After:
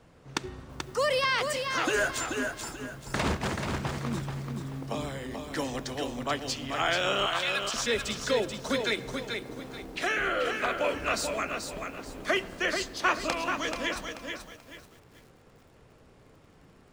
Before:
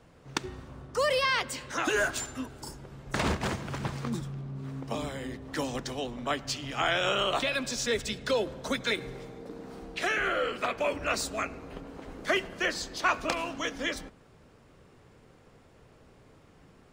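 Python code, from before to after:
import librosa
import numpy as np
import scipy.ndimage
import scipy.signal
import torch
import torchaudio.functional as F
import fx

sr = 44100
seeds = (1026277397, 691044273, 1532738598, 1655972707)

y = fx.steep_highpass(x, sr, hz=860.0, slope=48, at=(7.26, 7.74))
y = fx.echo_crushed(y, sr, ms=434, feedback_pct=35, bits=9, wet_db=-5.5)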